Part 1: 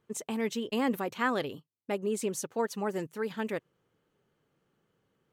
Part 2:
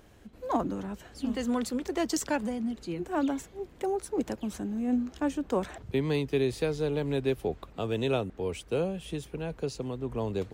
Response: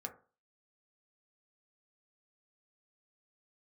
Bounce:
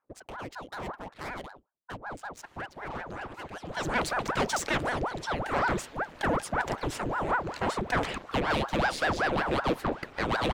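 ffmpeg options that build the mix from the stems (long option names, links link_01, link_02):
-filter_complex "[0:a]aeval=exprs='0.15*sin(PI/2*1.78*val(0)/0.15)':channel_layout=same,adynamicsmooth=sensitivity=6:basefreq=1000,volume=-13.5dB,asplit=3[link_01][link_02][link_03];[link_02]volume=-15.5dB[link_04];[1:a]asplit=2[link_05][link_06];[link_06]highpass=frequency=720:poles=1,volume=21dB,asoftclip=type=tanh:threshold=-16.5dB[link_07];[link_05][link_07]amix=inputs=2:normalize=0,lowpass=frequency=3200:poles=1,volume=-6dB,bandreject=frequency=60:width_type=h:width=6,bandreject=frequency=120:width_type=h:width=6,bandreject=frequency=180:width_type=h:width=6,bandreject=frequency=240:width_type=h:width=6,bandreject=frequency=300:width_type=h:width=6,bandreject=frequency=360:width_type=h:width=6,bandreject=frequency=420:width_type=h:width=6,adelay=2400,volume=0.5dB[link_08];[link_03]apad=whole_len=570222[link_09];[link_08][link_09]sidechaincompress=threshold=-49dB:ratio=10:attack=22:release=322[link_10];[2:a]atrim=start_sample=2205[link_11];[link_04][link_11]afir=irnorm=-1:irlink=0[link_12];[link_01][link_10][link_12]amix=inputs=3:normalize=0,aeval=exprs='val(0)*sin(2*PI*660*n/s+660*0.9/5.3*sin(2*PI*5.3*n/s))':channel_layout=same"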